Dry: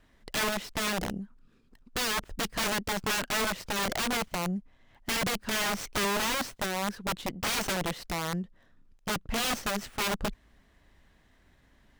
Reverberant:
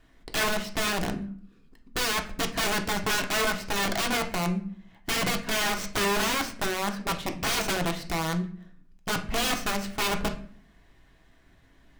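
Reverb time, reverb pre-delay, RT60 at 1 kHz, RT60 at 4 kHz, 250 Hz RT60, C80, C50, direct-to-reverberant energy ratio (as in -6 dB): 0.50 s, 3 ms, 0.50 s, 0.35 s, 0.70 s, 17.0 dB, 11.5 dB, 3.5 dB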